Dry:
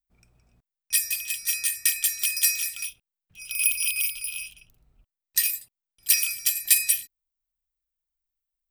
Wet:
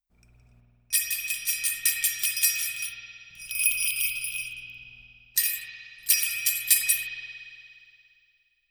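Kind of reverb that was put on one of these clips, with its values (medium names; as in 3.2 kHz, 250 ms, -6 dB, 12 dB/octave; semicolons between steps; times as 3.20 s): spring tank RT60 2.5 s, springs 50 ms, chirp 70 ms, DRR -0.5 dB; trim -1.5 dB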